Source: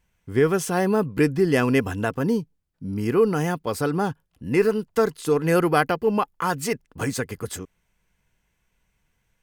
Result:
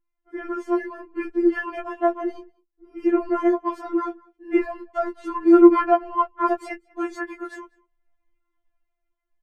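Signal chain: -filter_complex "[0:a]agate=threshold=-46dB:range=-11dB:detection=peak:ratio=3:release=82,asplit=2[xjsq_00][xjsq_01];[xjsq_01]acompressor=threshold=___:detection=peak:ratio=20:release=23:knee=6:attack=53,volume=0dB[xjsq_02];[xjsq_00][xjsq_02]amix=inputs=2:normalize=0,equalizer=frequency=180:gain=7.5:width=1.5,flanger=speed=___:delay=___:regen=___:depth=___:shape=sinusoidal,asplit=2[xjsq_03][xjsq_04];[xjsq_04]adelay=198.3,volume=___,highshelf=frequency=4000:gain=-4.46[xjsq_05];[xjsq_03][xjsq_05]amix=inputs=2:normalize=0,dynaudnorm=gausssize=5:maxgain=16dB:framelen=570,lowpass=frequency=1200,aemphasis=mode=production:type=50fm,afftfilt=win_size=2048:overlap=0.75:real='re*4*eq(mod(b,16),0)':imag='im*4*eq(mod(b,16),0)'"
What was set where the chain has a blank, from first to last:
-28dB, 0.71, 9.5, -28, 1.2, -26dB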